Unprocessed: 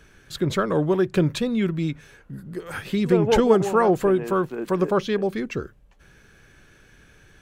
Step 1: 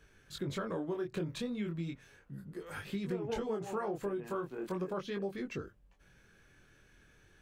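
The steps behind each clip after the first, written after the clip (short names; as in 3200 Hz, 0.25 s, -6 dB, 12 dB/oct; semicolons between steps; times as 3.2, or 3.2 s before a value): chorus 0.37 Hz, delay 20 ms, depth 4.7 ms; compressor 5:1, threshold -26 dBFS, peak gain reduction 11 dB; gain -7.5 dB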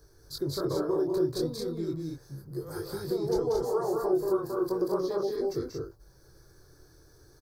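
EQ curve 140 Hz 0 dB, 210 Hz -17 dB, 330 Hz +3 dB, 600 Hz -2 dB, 1100 Hz -3 dB, 1700 Hz -13 dB, 2800 Hz -29 dB, 4700 Hz +8 dB, 7100 Hz -4 dB, 13000 Hz +8 dB; on a send: loudspeakers at several distances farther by 64 m -4 dB, 77 m -3 dB; on the sum: gain +6 dB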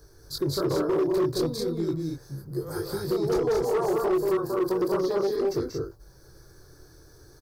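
hard clip -25 dBFS, distortion -13 dB; gain +5 dB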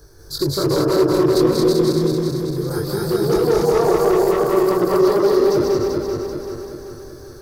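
regenerating reverse delay 0.193 s, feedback 72%, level -2 dB; gain +6.5 dB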